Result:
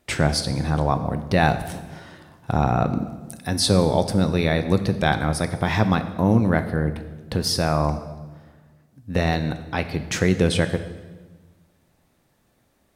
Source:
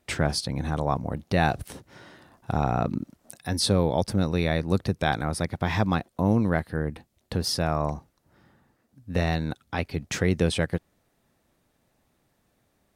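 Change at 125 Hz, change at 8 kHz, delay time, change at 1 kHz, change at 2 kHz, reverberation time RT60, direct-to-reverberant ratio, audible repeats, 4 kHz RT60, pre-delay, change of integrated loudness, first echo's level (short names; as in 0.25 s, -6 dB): +4.5 dB, +4.5 dB, none, +4.5 dB, +4.5 dB, 1.3 s, 9.0 dB, none, 1.1 s, 3 ms, +4.5 dB, none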